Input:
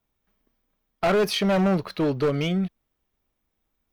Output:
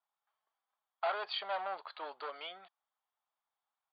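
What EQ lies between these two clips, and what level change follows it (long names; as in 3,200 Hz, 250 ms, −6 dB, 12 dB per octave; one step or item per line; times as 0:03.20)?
dynamic equaliser 1,100 Hz, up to −4 dB, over −37 dBFS, Q 1.2
four-pole ladder high-pass 700 Hz, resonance 50%
Chebyshev low-pass with heavy ripple 4,700 Hz, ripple 6 dB
+1.0 dB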